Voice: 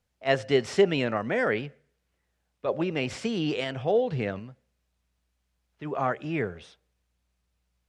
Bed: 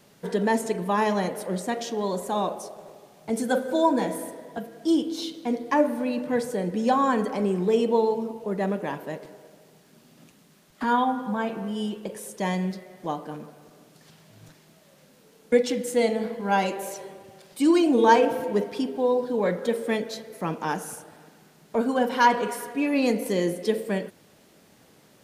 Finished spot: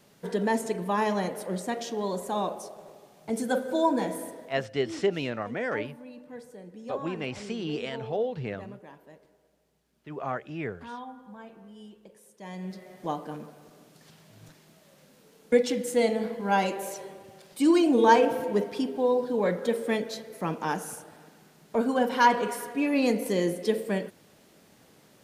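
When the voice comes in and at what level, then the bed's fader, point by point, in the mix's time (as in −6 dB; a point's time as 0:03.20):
4.25 s, −5.0 dB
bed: 0:04.44 −3 dB
0:04.70 −18 dB
0:12.38 −18 dB
0:12.88 −1.5 dB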